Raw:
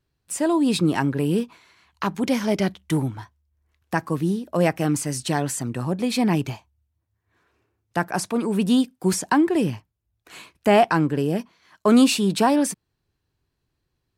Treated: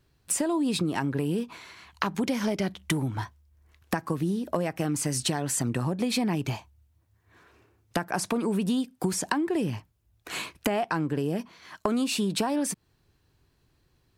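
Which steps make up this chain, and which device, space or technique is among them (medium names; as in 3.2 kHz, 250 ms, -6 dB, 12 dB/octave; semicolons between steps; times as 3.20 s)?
serial compression, peaks first (compression 5:1, threshold -27 dBFS, peak gain reduction 14 dB; compression 2.5:1, threshold -35 dBFS, peak gain reduction 8 dB); trim +8.5 dB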